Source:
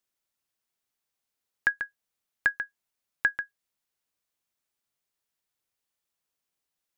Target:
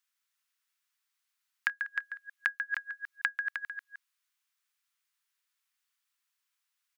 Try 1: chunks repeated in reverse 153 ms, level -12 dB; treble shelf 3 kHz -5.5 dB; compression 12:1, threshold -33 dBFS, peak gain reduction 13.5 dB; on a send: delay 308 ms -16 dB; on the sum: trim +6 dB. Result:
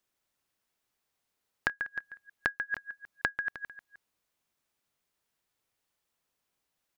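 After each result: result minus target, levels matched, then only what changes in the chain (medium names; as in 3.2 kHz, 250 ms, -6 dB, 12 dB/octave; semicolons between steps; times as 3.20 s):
echo-to-direct -8.5 dB; 1 kHz band +3.5 dB
change: delay 308 ms -7.5 dB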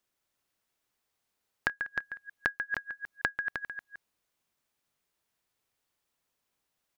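1 kHz band +4.0 dB
add after chunks repeated in reverse: high-pass 1.2 kHz 24 dB/octave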